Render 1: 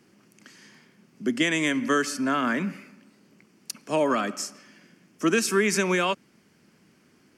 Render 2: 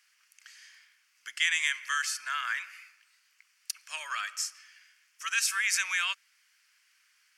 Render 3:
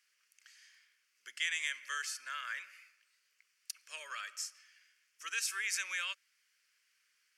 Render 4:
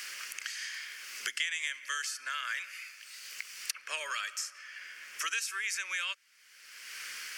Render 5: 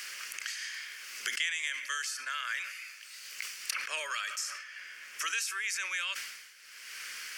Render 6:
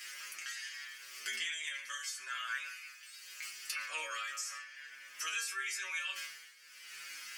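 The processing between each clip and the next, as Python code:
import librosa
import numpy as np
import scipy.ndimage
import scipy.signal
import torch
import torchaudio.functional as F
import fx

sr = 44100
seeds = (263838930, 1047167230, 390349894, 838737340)

y1 = scipy.signal.sosfilt(scipy.signal.butter(4, 1500.0, 'highpass', fs=sr, output='sos'), x)
y2 = fx.low_shelf_res(y1, sr, hz=630.0, db=6.5, q=3.0)
y2 = F.gain(torch.from_numpy(y2), -7.5).numpy()
y3 = fx.band_squash(y2, sr, depth_pct=100)
y3 = F.gain(torch.from_numpy(y3), 4.0).numpy()
y4 = fx.sustainer(y3, sr, db_per_s=52.0)
y5 = fx.stiff_resonator(y4, sr, f0_hz=76.0, decay_s=0.52, stiffness=0.002)
y5 = F.gain(torch.from_numpy(y5), 6.0).numpy()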